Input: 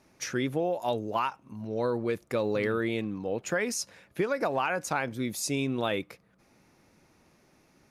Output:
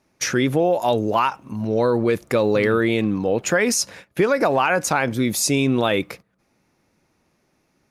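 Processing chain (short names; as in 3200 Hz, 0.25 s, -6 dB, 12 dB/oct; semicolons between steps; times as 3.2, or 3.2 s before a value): gate -52 dBFS, range -16 dB; in parallel at +2.5 dB: limiter -25 dBFS, peak gain reduction 9.5 dB; on the sum: gain +5.5 dB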